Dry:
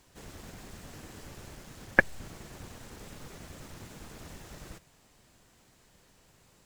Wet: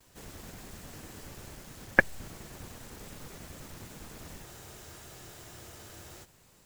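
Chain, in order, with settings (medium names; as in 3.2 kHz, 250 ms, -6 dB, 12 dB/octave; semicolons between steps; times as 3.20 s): gate with hold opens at -55 dBFS; treble shelf 11 kHz +8.5 dB; spectral freeze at 4.49 s, 1.74 s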